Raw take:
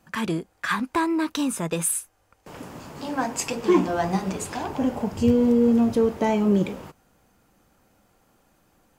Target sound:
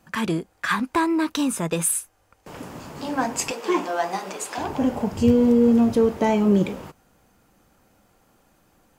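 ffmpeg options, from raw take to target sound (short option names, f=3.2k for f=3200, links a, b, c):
-filter_complex "[0:a]asettb=1/sr,asplit=3[a][b][c];[a]atrim=end=3.514[d];[b]atrim=start=3.51:end=4.58,asetpts=PTS-STARTPTS,afade=t=in:d=0.004:c=qsin,afade=t=out:st=1.066:d=0.004:c=qsin,highpass=480[e];[c]atrim=start=4.576[f];[d][e]acrossfade=d=0.004:c1=hsin:c2=qsin[g];[g][f]acrossfade=d=0.004:c1=qsin:c2=hsin,volume=2dB"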